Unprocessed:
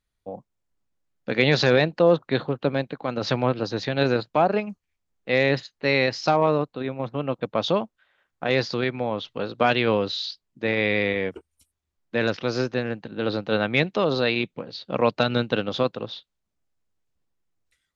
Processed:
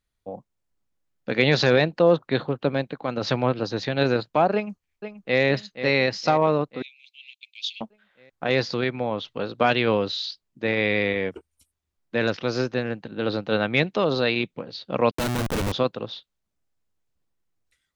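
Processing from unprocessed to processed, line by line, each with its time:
4.54–5.41 echo throw 0.48 s, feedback 60%, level -10.5 dB
6.82–7.81 steep high-pass 2300 Hz 96 dB/oct
15.11–15.72 Schmitt trigger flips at -31 dBFS

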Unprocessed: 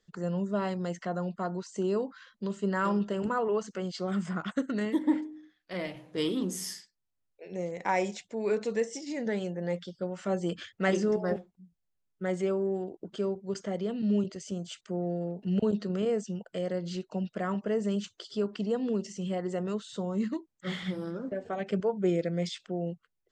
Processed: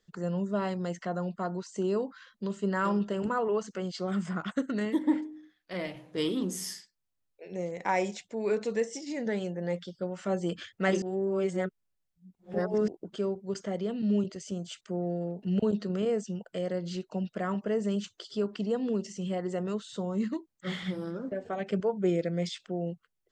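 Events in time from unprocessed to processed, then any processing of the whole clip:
11.02–12.88 reverse

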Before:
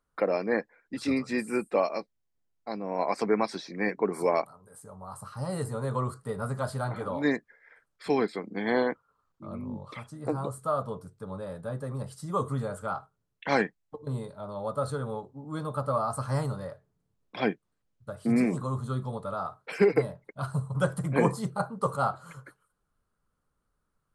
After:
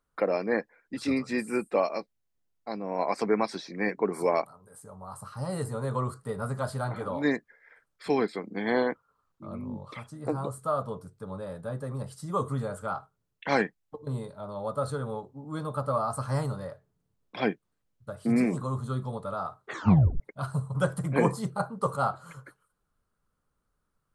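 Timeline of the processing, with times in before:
19.6 tape stop 0.60 s

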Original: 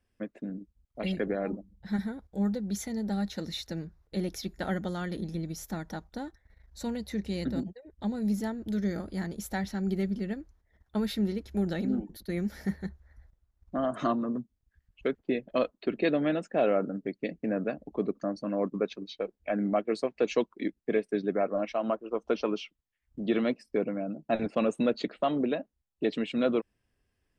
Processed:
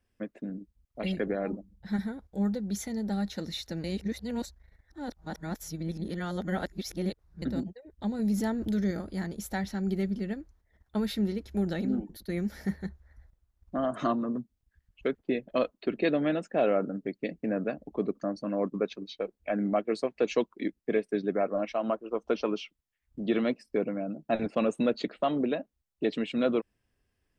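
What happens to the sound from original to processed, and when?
3.84–7.42 reverse
8.19–8.91 fast leveller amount 50%

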